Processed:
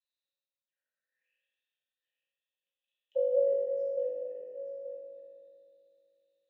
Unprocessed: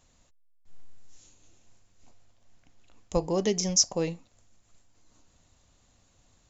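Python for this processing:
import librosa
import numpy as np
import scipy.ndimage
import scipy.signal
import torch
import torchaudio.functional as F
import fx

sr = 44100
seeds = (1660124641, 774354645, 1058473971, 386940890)

y = fx.reverse_delay(x, sr, ms=144, wet_db=-12)
y = fx.auto_wah(y, sr, base_hz=580.0, top_hz=4100.0, q=12.0, full_db=-29.5, direction='down')
y = fx.vowel_filter(y, sr, vowel='e')
y = y + 10.0 ** (-11.0 / 20.0) * np.pad(y, (int(879 * sr / 1000.0), 0))[:len(y)]
y = fx.rev_fdn(y, sr, rt60_s=2.5, lf_ratio=1.35, hf_ratio=0.65, size_ms=11.0, drr_db=-8.0)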